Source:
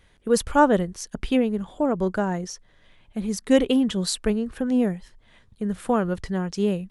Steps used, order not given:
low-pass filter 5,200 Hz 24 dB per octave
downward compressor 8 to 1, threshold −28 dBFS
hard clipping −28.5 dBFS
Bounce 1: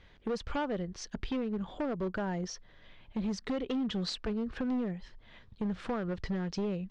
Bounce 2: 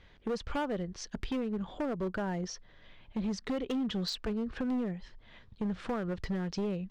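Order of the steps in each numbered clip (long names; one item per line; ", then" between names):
downward compressor, then hard clipping, then low-pass filter
downward compressor, then low-pass filter, then hard clipping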